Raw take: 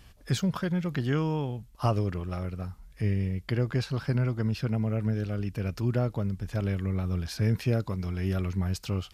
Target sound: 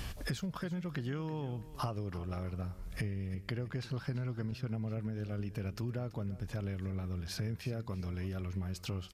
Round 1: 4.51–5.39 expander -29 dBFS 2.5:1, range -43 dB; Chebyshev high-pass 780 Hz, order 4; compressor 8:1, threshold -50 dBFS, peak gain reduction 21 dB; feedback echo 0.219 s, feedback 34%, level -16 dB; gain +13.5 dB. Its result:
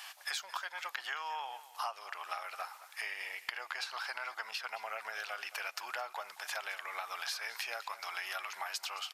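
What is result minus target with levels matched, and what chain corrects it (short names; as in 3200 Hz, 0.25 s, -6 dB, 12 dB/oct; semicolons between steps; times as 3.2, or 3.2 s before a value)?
1000 Hz band +9.5 dB; echo 0.115 s early
4.51–5.39 expander -29 dBFS 2.5:1, range -43 dB; compressor 8:1, threshold -50 dBFS, peak gain reduction 27 dB; feedback echo 0.334 s, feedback 34%, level -16 dB; gain +13.5 dB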